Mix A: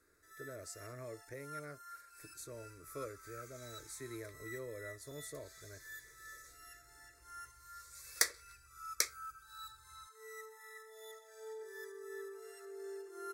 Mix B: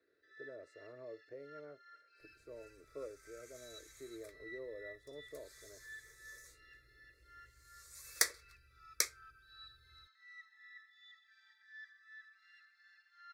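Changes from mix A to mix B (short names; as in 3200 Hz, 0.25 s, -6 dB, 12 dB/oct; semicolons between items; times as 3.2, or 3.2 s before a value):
speech: add band-pass 490 Hz, Q 1.4; first sound: add elliptic band-pass 1600–4400 Hz, stop band 60 dB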